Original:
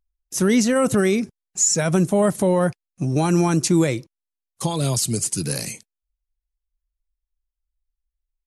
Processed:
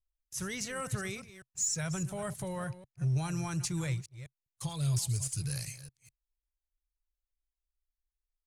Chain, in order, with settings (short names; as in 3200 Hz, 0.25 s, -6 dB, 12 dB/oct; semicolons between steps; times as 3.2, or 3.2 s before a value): reverse delay 0.203 s, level -13 dB; EQ curve 130 Hz 0 dB, 230 Hz -25 dB, 1600 Hz -9 dB; sample leveller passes 1; gain -7 dB